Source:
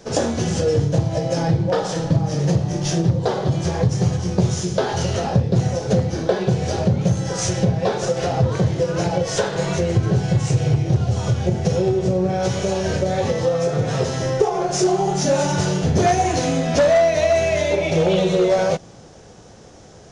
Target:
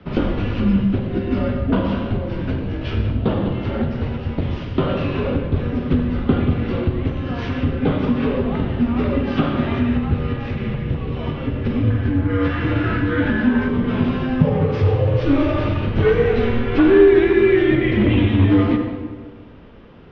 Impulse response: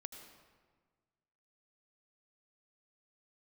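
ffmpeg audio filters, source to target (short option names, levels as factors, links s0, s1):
-filter_complex "[1:a]atrim=start_sample=2205[s0];[0:a][s0]afir=irnorm=-1:irlink=0,highpass=f=190:t=q:w=0.5412,highpass=f=190:t=q:w=1.307,lowpass=f=3400:t=q:w=0.5176,lowpass=f=3400:t=q:w=0.7071,lowpass=f=3400:t=q:w=1.932,afreqshift=-270,asettb=1/sr,asplit=3[s1][s2][s3];[s1]atrim=end=11.904[s4];[s2]atrim=start=11.9:end=13.69,asetpts=PTS-STARTPTS,afade=t=in:d=0.004:c=qsin,afade=t=out:st=1.786:d=0.004:c=qsin,equalizer=f=1600:t=o:w=0.51:g=11.5[s5];[s3]atrim=start=13.686[s6];[s4][s5]acrossfade=d=0.004:c1=hsin:c2=qsin[s7];[s7][s6]acrossfade=d=0.004:c1=qsin:c2=hsin,volume=2.24"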